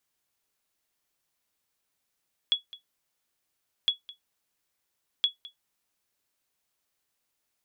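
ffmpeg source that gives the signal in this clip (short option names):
-f lavfi -i "aevalsrc='0.188*(sin(2*PI*3370*mod(t,1.36))*exp(-6.91*mod(t,1.36)/0.13)+0.1*sin(2*PI*3370*max(mod(t,1.36)-0.21,0))*exp(-6.91*max(mod(t,1.36)-0.21,0)/0.13))':d=4.08:s=44100"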